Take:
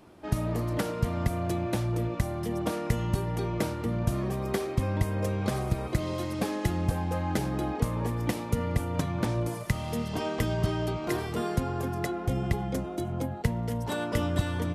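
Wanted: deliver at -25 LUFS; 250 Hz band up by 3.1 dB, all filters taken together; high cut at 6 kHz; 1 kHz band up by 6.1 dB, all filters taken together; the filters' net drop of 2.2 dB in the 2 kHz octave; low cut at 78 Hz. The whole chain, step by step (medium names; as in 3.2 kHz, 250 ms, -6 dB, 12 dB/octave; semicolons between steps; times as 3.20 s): high-pass 78 Hz; low-pass 6 kHz; peaking EQ 250 Hz +4 dB; peaking EQ 1 kHz +9 dB; peaking EQ 2 kHz -6.5 dB; trim +3.5 dB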